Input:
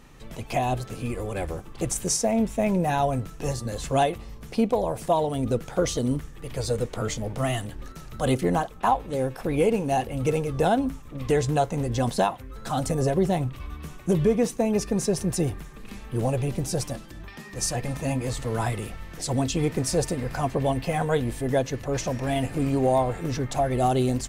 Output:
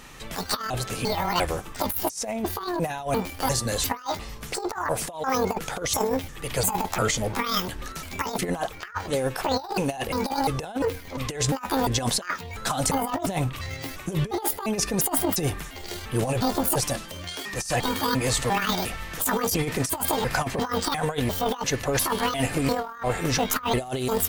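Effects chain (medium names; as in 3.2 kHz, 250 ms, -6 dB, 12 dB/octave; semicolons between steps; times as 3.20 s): pitch shift switched off and on +10 st, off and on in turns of 349 ms; tilt shelf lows -5.5 dB, about 660 Hz; compressor with a negative ratio -28 dBFS, ratio -0.5; trim +3 dB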